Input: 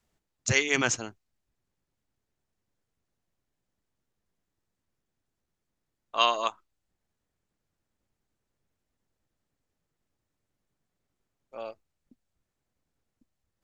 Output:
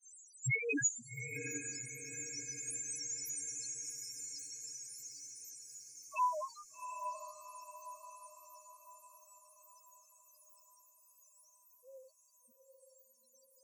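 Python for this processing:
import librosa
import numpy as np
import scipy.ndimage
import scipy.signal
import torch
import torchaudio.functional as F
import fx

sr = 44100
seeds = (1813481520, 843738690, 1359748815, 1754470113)

p1 = x + 0.5 * 10.0 ** (-20.5 / 20.0) * np.diff(np.sign(x), prepend=np.sign(x[:1]))
p2 = fx.doppler_pass(p1, sr, speed_mps=22, closest_m=12.0, pass_at_s=3.08)
p3 = fx.dynamic_eq(p2, sr, hz=5800.0, q=0.73, threshold_db=-51.0, ratio=4.0, max_db=6)
p4 = fx.granulator(p3, sr, seeds[0], grain_ms=164.0, per_s=15.0, spray_ms=28.0, spread_st=0)
p5 = fx.quant_companded(p4, sr, bits=4)
p6 = p4 + F.gain(torch.from_numpy(p5), -10.5).numpy()
p7 = fx.spec_topn(p6, sr, count=1)
p8 = fx.echo_diffused(p7, sr, ms=780, feedback_pct=48, wet_db=-7.5)
y = F.gain(torch.from_numpy(p8), 14.5).numpy()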